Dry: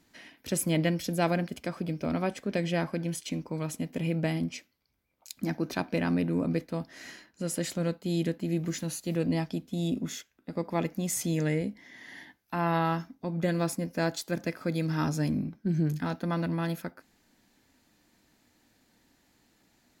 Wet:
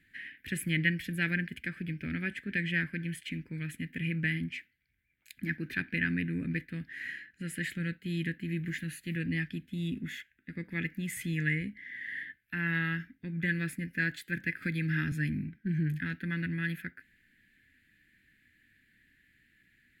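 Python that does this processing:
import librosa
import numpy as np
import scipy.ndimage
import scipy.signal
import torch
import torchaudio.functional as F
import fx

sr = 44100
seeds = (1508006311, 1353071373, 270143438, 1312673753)

y = fx.band_squash(x, sr, depth_pct=100, at=(14.62, 15.12))
y = fx.curve_eq(y, sr, hz=(120.0, 380.0, 660.0, 1100.0, 1700.0, 3200.0, 5800.0, 8900.0), db=(0, -10, -28, -25, 11, -1, -20, -8))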